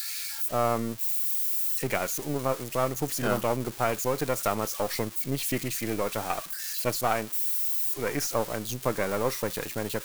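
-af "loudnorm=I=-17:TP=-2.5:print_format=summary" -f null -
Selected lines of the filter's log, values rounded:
Input Integrated:    -28.0 LUFS
Input True Peak:      -9.9 dBTP
Input LRA:             1.6 LU
Input Threshold:     -38.0 LUFS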